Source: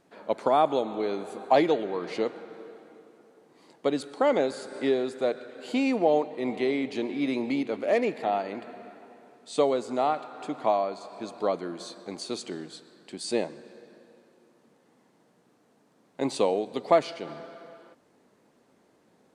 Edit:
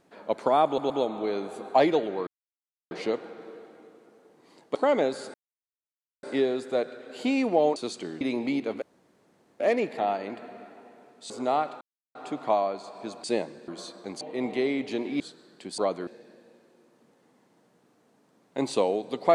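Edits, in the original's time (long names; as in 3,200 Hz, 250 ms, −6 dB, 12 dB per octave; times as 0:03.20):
0:00.66: stutter 0.12 s, 3 plays
0:02.03: splice in silence 0.64 s
0:03.87–0:04.13: remove
0:04.72: splice in silence 0.89 s
0:06.25–0:07.24: swap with 0:12.23–0:12.68
0:07.85: splice in room tone 0.78 s
0:09.55–0:09.81: remove
0:10.32: splice in silence 0.34 s
0:11.41–0:11.70: swap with 0:13.26–0:13.70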